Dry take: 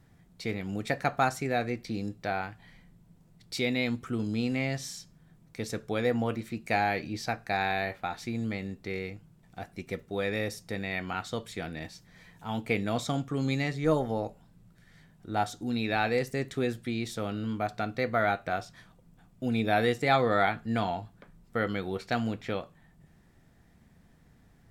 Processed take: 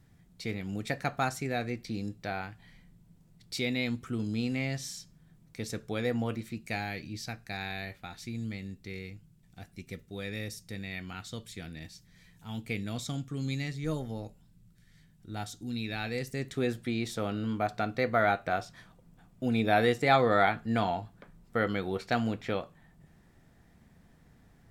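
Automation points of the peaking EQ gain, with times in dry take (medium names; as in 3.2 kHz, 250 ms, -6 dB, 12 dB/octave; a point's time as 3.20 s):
peaking EQ 770 Hz 2.8 oct
6.39 s -5 dB
6.89 s -13 dB
15.96 s -13 dB
16.39 s -7 dB
16.72 s +1 dB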